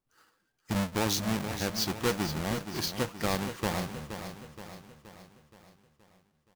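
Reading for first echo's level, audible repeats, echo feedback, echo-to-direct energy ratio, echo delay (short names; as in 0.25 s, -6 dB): -9.5 dB, 5, 52%, -8.0 dB, 0.473 s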